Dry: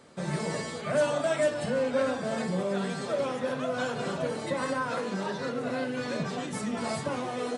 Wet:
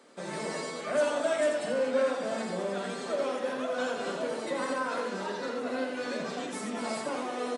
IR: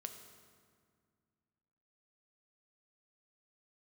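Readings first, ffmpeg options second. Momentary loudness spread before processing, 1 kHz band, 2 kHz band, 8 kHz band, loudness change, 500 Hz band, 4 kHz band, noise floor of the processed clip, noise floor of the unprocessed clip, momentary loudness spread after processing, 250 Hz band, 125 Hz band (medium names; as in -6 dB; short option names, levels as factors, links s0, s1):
6 LU, -1.0 dB, -1.0 dB, -1.0 dB, -1.5 dB, -0.5 dB, -1.0 dB, -38 dBFS, -37 dBFS, 7 LU, -3.5 dB, -12.0 dB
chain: -af "highpass=f=230:w=0.5412,highpass=f=230:w=1.3066,aecho=1:1:84.55|230.3:0.501|0.251,volume=0.794"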